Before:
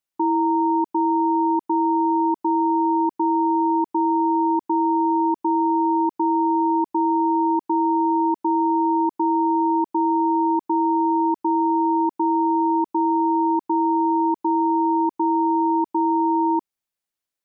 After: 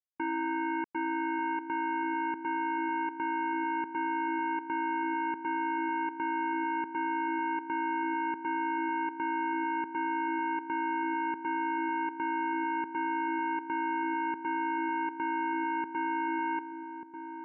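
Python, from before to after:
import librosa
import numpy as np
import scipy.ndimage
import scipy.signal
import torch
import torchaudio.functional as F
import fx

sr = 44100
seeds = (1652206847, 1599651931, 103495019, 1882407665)

y = fx.power_curve(x, sr, exponent=3.0)
y = fx.air_absorb(y, sr, metres=160.0)
y = fx.echo_filtered(y, sr, ms=1190, feedback_pct=40, hz=820.0, wet_db=-7.5)
y = y * librosa.db_to_amplitude(-7.5)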